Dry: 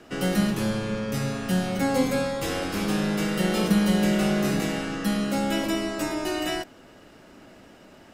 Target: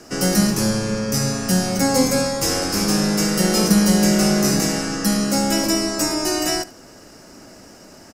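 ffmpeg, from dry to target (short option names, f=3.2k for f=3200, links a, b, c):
-af "highshelf=f=4.3k:t=q:w=3:g=7,aecho=1:1:74:0.106,volume=5.5dB"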